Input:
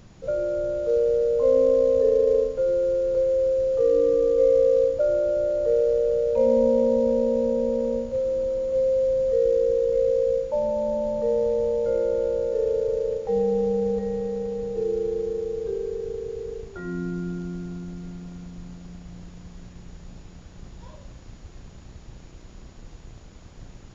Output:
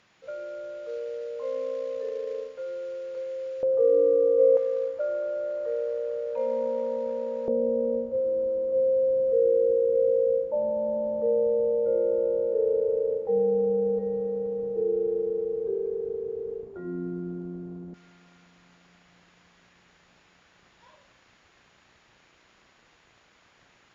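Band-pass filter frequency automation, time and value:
band-pass filter, Q 0.99
2.2 kHz
from 3.63 s 590 Hz
from 4.57 s 1.4 kHz
from 7.48 s 390 Hz
from 17.94 s 2 kHz

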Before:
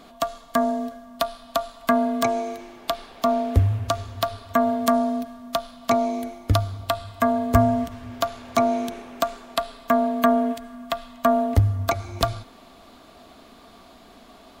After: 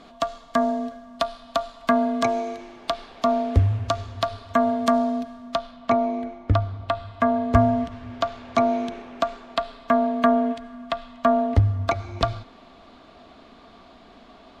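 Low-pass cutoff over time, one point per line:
5.36 s 6.1 kHz
5.99 s 2.3 kHz
6.67 s 2.3 kHz
7.65 s 4.2 kHz

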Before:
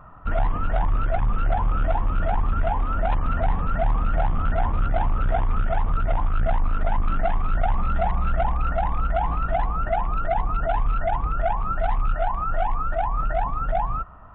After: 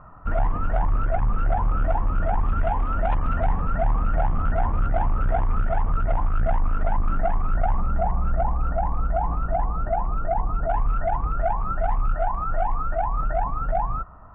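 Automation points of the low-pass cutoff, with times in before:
1.9 kHz
from 2.41 s 2.7 kHz
from 3.48 s 2 kHz
from 6.92 s 1.6 kHz
from 7.80 s 1.1 kHz
from 10.70 s 1.6 kHz

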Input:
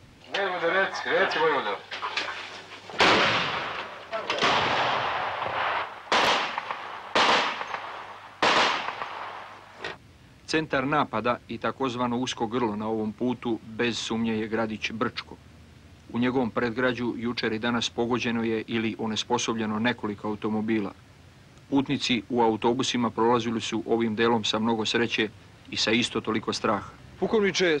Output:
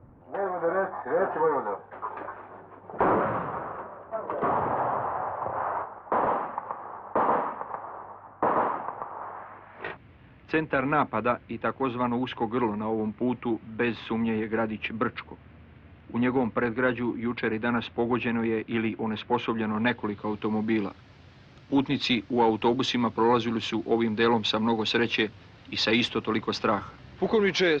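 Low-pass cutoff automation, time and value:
low-pass 24 dB/octave
9.16 s 1.2 kHz
9.90 s 2.7 kHz
19.47 s 2.7 kHz
20.60 s 5.1 kHz

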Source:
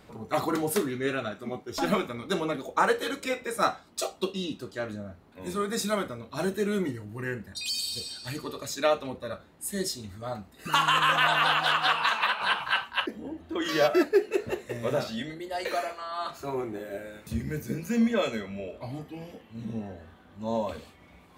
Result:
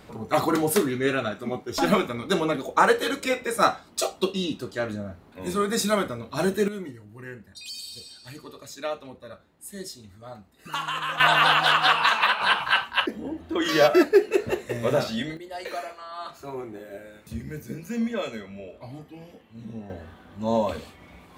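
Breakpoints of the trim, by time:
+5 dB
from 6.68 s -6.5 dB
from 11.20 s +5 dB
from 15.37 s -3 dB
from 19.90 s +6 dB

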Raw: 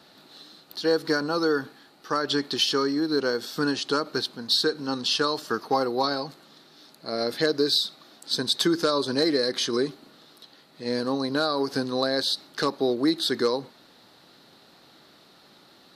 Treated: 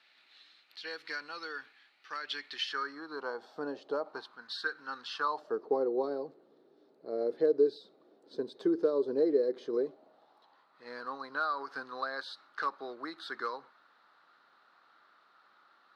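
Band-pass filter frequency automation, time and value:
band-pass filter, Q 3.2
2.44 s 2.3 kHz
3.84 s 520 Hz
4.46 s 1.5 kHz
5.12 s 1.5 kHz
5.61 s 430 Hz
9.58 s 430 Hz
10.87 s 1.3 kHz

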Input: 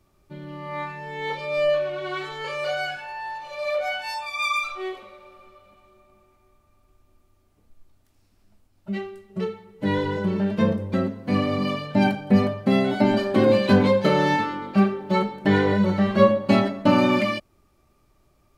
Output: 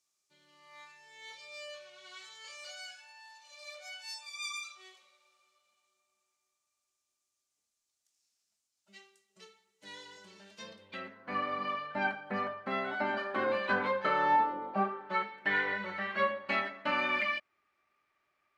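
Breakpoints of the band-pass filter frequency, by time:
band-pass filter, Q 2.1
10.56 s 6.7 kHz
11.26 s 1.4 kHz
14.16 s 1.4 kHz
14.57 s 600 Hz
15.26 s 1.9 kHz

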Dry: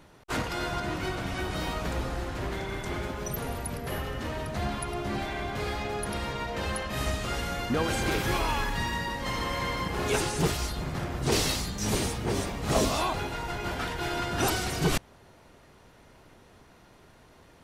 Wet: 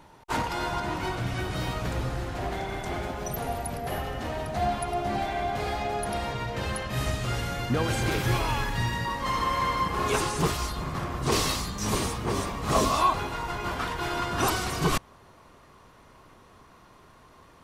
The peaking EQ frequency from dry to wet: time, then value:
peaking EQ +11.5 dB 0.28 oct
910 Hz
from 1.17 s 120 Hz
from 2.34 s 730 Hz
from 6.34 s 120 Hz
from 9.05 s 1.1 kHz

